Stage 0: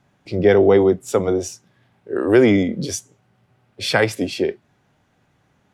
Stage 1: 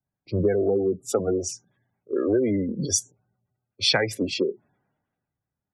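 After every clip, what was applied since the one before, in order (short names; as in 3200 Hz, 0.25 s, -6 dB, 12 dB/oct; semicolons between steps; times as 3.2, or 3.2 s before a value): spectral gate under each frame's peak -20 dB strong; compressor 8:1, threshold -20 dBFS, peak gain reduction 11.5 dB; three-band expander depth 70%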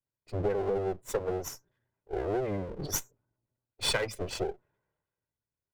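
minimum comb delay 2 ms; gain -6.5 dB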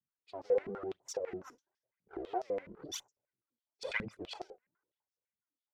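phaser 0.98 Hz, delay 4.3 ms, feedback 62%; stepped band-pass 12 Hz 200–5400 Hz; gain +2 dB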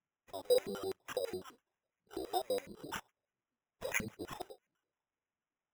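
sample-and-hold 10×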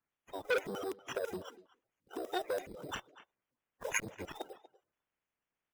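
bin magnitudes rounded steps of 30 dB; speakerphone echo 0.24 s, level -17 dB; core saturation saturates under 1600 Hz; gain +3 dB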